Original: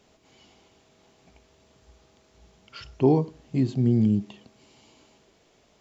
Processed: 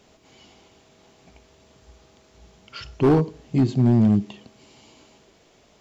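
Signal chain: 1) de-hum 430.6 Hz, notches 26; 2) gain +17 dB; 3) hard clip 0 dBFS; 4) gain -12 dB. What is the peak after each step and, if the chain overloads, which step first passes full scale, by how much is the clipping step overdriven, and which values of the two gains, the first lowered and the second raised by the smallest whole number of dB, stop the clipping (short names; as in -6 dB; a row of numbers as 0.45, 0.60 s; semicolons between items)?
-8.0, +9.0, 0.0, -12.0 dBFS; step 2, 9.0 dB; step 2 +8 dB, step 4 -3 dB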